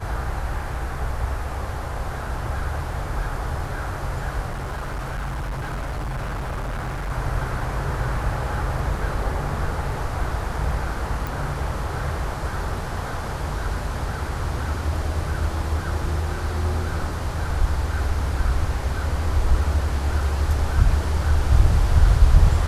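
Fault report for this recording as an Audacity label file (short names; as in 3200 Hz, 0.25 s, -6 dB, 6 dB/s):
4.480000	7.110000	clipped -24.5 dBFS
11.270000	11.270000	pop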